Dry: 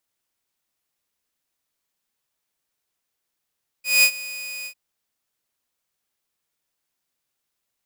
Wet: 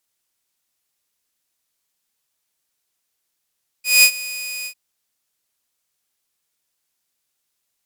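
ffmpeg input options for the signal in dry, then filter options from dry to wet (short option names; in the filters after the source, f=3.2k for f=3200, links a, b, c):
-f lavfi -i "aevalsrc='0.376*(2*mod(2480*t,1)-1)':d=0.898:s=44100,afade=t=in:d=0.192,afade=t=out:st=0.192:d=0.074:silence=0.106,afade=t=out:st=0.82:d=0.078"
-af "equalizer=f=9.2k:t=o:w=2.9:g=6.5"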